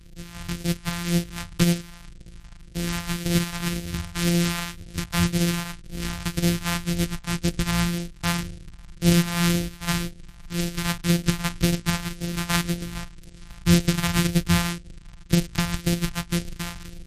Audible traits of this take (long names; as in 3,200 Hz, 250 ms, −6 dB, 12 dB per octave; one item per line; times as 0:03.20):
a buzz of ramps at a fixed pitch in blocks of 256 samples
phaser sweep stages 2, 1.9 Hz, lowest notch 390–1,000 Hz
MP3